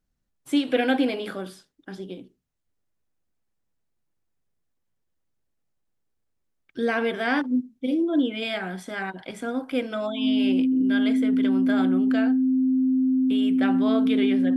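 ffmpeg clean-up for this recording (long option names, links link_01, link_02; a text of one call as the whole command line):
ffmpeg -i in.wav -af "bandreject=frequency=260:width=30" out.wav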